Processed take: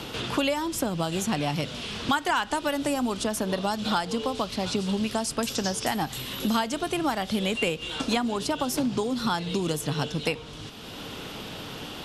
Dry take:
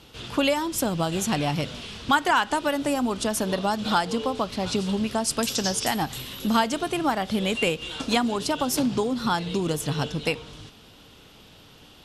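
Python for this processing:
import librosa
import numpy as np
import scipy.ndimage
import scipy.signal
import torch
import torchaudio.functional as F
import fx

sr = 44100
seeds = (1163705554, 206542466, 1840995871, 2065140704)

y = fx.band_squash(x, sr, depth_pct=70)
y = y * librosa.db_to_amplitude(-2.5)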